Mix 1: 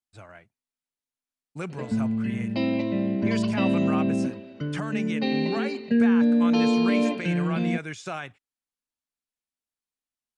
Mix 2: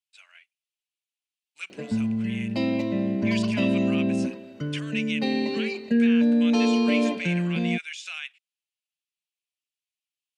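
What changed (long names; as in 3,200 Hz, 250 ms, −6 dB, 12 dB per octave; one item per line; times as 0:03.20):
speech: add high-pass with resonance 2,700 Hz, resonance Q 3.1
background: remove low-pass filter 5,000 Hz 24 dB per octave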